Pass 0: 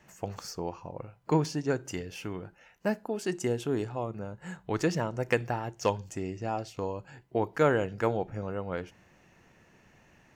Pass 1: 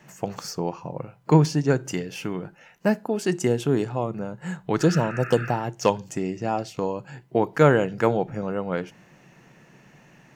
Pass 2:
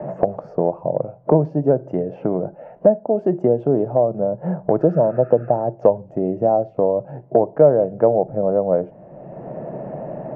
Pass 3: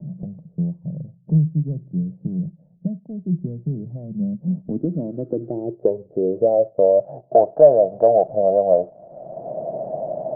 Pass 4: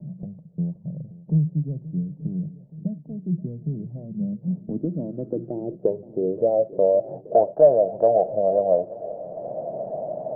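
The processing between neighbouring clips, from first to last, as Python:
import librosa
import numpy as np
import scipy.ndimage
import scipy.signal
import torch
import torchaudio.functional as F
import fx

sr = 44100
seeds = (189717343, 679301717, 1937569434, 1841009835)

y1 = fx.spec_repair(x, sr, seeds[0], start_s=4.84, length_s=0.65, low_hz=1200.0, high_hz=2800.0, source='after')
y1 = fx.low_shelf_res(y1, sr, hz=110.0, db=-7.0, q=3.0)
y1 = y1 * 10.0 ** (6.5 / 20.0)
y2 = fx.lowpass_res(y1, sr, hz=620.0, q=6.3)
y2 = fx.band_squash(y2, sr, depth_pct=70)
y3 = fx.leveller(y2, sr, passes=1)
y3 = fx.filter_sweep_lowpass(y3, sr, from_hz=170.0, to_hz=670.0, start_s=3.84, end_s=7.14, q=5.6)
y3 = y3 * 10.0 ** (-11.0 / 20.0)
y4 = fx.echo_swing(y3, sr, ms=876, ratio=1.5, feedback_pct=57, wet_db=-18)
y4 = y4 * 10.0 ** (-3.5 / 20.0)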